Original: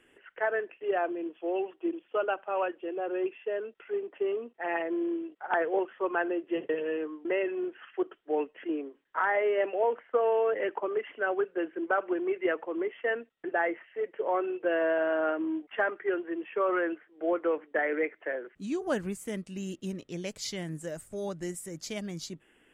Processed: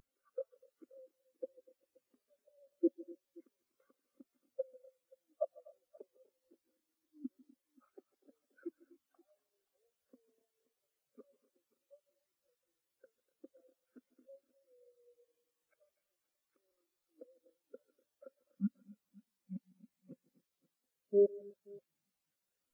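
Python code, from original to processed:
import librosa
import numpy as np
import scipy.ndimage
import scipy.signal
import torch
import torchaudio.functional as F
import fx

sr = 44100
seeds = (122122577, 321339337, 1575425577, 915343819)

p1 = fx.block_float(x, sr, bits=3)
p2 = fx.peak_eq(p1, sr, hz=250.0, db=-14.0, octaves=1.9)
p3 = fx.formant_shift(p2, sr, semitones=-4)
p4 = fx.level_steps(p3, sr, step_db=9)
p5 = p3 + F.gain(torch.from_numpy(p4), 0.0).numpy()
p6 = fx.gate_flip(p5, sr, shuts_db=-29.0, range_db=-34)
p7 = np.convolve(p6, np.full(11, 1.0 / 11))[:len(p6)]
p8 = fx.notch_comb(p7, sr, f0_hz=970.0)
p9 = fx.small_body(p8, sr, hz=(250.0, 530.0), ring_ms=50, db=17)
p10 = fx.quant_dither(p9, sr, seeds[0], bits=8, dither='triangular')
p11 = p10 + fx.echo_multitap(p10, sr, ms=(143, 155, 246, 275, 528), db=(-15.5, -12.0, -10.5, -13.5, -10.5), dry=0)
p12 = fx.spectral_expand(p11, sr, expansion=2.5)
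y = F.gain(torch.from_numpy(p12), 3.5).numpy()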